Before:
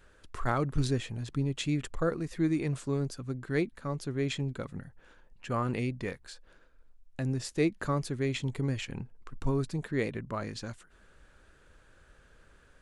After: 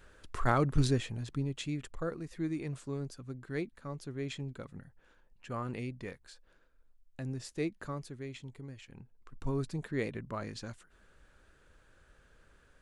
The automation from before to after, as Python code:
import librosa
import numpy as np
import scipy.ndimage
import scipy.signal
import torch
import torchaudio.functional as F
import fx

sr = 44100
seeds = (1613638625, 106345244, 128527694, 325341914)

y = fx.gain(x, sr, db=fx.line((0.8, 1.5), (1.79, -7.0), (7.61, -7.0), (8.77, -16.0), (9.59, -3.5)))